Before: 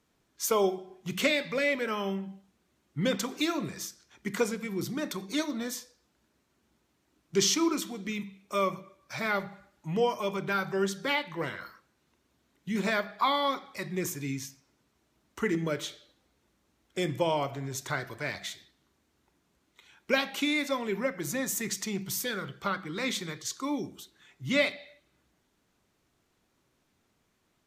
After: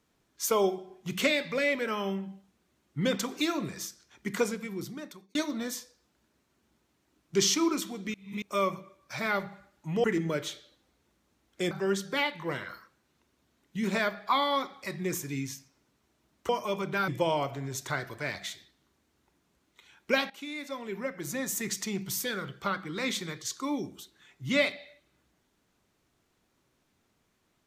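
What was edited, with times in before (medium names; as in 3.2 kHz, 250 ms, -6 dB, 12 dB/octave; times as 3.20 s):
4.47–5.35 s: fade out
8.14–8.42 s: reverse
10.04–10.63 s: swap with 15.41–17.08 s
20.30–21.69 s: fade in, from -15.5 dB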